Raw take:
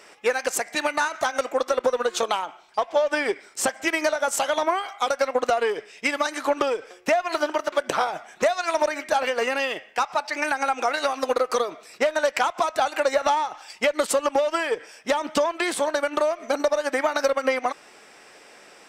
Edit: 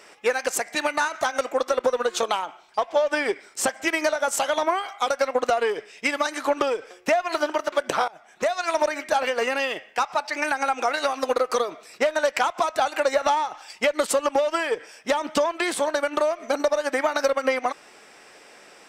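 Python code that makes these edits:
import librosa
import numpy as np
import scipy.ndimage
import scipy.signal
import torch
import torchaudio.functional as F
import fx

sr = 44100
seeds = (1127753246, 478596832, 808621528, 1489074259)

y = fx.edit(x, sr, fx.fade_in_from(start_s=8.08, length_s=0.54, floor_db=-22.0), tone=tone)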